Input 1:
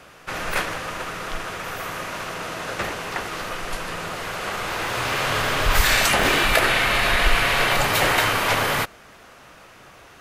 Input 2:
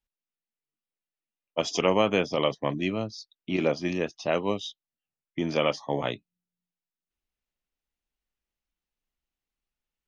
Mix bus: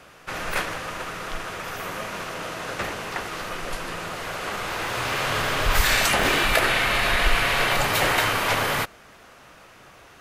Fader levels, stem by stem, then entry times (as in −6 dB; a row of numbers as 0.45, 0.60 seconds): −2.0, −17.0 decibels; 0.00, 0.00 seconds